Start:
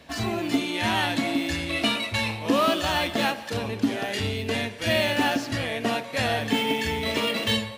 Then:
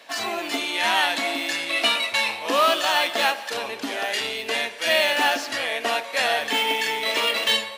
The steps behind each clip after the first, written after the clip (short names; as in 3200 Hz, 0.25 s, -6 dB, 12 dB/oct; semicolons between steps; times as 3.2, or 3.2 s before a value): HPF 600 Hz 12 dB/oct; gain +5 dB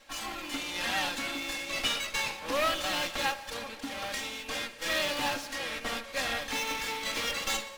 minimum comb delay 3.7 ms; gain -7.5 dB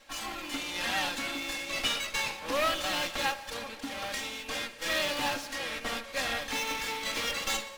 nothing audible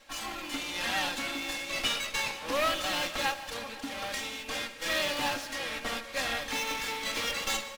tapped delay 0.154/0.503 s -19/-20 dB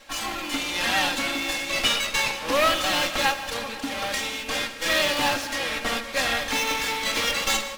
reverb RT60 1.6 s, pre-delay 62 ms, DRR 15.5 dB; gain +7.5 dB